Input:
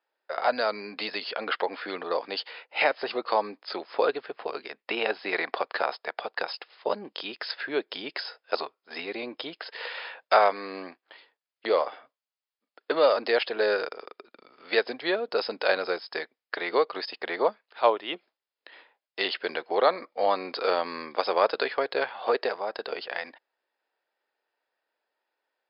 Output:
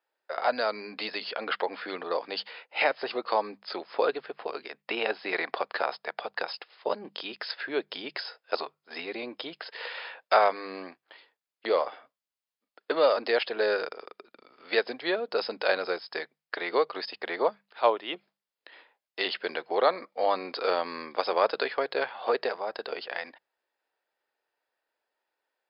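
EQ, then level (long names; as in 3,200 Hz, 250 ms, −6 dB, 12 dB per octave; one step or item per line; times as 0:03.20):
mains-hum notches 50/100/150/200 Hz
−1.5 dB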